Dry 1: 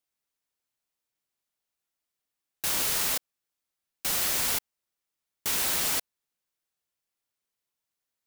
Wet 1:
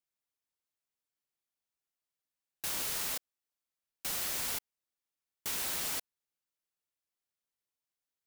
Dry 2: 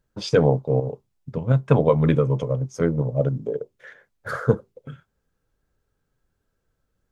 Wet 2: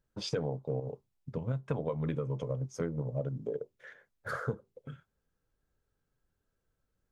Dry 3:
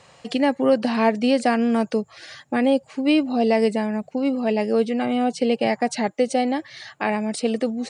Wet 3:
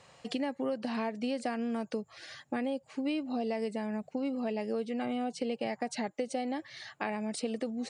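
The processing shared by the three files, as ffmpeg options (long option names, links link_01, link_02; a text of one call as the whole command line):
ffmpeg -i in.wav -af "acompressor=threshold=-23dB:ratio=6,volume=-7dB" out.wav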